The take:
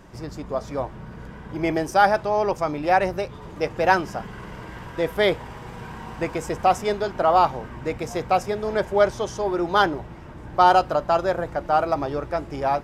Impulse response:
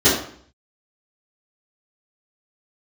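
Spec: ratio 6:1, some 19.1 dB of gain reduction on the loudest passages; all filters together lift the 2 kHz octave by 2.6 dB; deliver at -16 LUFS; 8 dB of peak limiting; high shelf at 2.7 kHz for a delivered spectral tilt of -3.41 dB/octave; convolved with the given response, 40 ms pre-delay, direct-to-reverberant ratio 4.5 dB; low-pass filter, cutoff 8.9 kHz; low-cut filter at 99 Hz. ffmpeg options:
-filter_complex "[0:a]highpass=99,lowpass=8900,equalizer=f=2000:t=o:g=6,highshelf=f=2700:g=-6,acompressor=threshold=0.0224:ratio=6,alimiter=level_in=1.41:limit=0.0631:level=0:latency=1,volume=0.708,asplit=2[s0][s1];[1:a]atrim=start_sample=2205,adelay=40[s2];[s1][s2]afir=irnorm=-1:irlink=0,volume=0.0447[s3];[s0][s3]amix=inputs=2:normalize=0,volume=10"

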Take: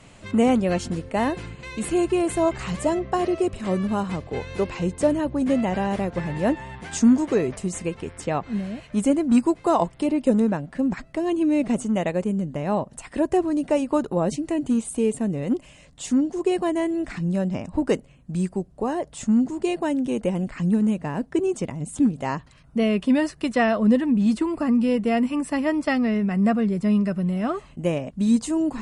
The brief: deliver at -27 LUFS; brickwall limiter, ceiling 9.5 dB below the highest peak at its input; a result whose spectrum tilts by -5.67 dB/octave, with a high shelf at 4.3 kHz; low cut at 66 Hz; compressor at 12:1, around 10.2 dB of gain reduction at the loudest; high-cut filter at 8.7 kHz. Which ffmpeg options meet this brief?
-af "highpass=66,lowpass=8700,highshelf=f=4300:g=4.5,acompressor=threshold=0.0708:ratio=12,volume=1.58,alimiter=limit=0.119:level=0:latency=1"

